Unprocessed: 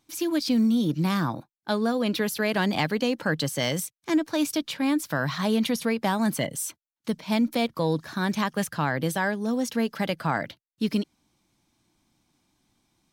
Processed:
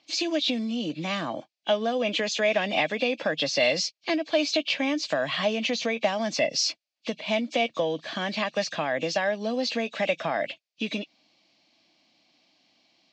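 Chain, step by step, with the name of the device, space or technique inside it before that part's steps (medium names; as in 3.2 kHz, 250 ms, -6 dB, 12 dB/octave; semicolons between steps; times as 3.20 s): hearing aid with frequency lowering (knee-point frequency compression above 2.2 kHz 1.5:1; compression 4:1, threshold -27 dBFS, peak gain reduction 8 dB; cabinet simulation 360–5800 Hz, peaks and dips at 390 Hz -8 dB, 630 Hz +7 dB, 940 Hz -9 dB, 1.4 kHz -10 dB, 2.5 kHz +6 dB, 4.6 kHz +6 dB); trim +7.5 dB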